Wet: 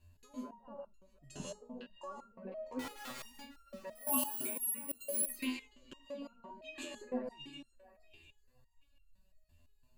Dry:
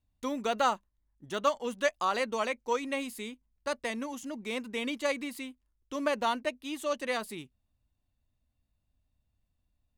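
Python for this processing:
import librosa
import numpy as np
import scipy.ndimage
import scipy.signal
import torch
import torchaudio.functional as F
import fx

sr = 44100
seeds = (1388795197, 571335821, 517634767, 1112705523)

y = fx.env_lowpass_down(x, sr, base_hz=380.0, full_db=-27.5)
y = fx.dereverb_blind(y, sr, rt60_s=1.5)
y = fx.ripple_eq(y, sr, per_octave=1.4, db=10)
y = fx.over_compress(y, sr, threshold_db=-46.0, ratio=-1.0)
y = fx.overflow_wrap(y, sr, gain_db=43.5, at=(2.79, 3.25))
y = fx.echo_thinned(y, sr, ms=710, feedback_pct=22, hz=840.0, wet_db=-14.0)
y = fx.rev_gated(y, sr, seeds[0], gate_ms=200, shape='rising', drr_db=1.5)
y = fx.resample_bad(y, sr, factor=4, down='filtered', up='zero_stuff', at=(3.95, 5.36))
y = fx.resonator_held(y, sr, hz=5.9, low_hz=85.0, high_hz=1400.0)
y = F.gain(torch.from_numpy(y), 12.5).numpy()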